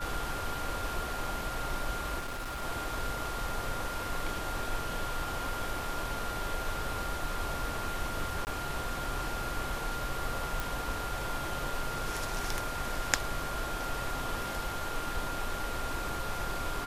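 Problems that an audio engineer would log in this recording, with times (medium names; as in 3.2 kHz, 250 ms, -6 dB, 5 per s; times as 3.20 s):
whine 1.4 kHz -39 dBFS
2.19–2.63 s: clipped -34 dBFS
8.45–8.47 s: dropout 19 ms
10.60 s: pop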